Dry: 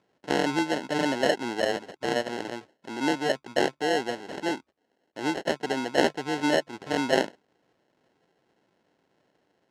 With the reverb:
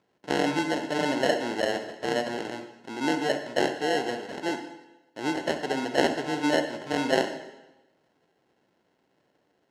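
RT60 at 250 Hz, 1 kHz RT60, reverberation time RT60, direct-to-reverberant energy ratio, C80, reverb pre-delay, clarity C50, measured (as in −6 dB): 1.0 s, 1.0 s, 1.0 s, 7.0 dB, 11.0 dB, 40 ms, 7.5 dB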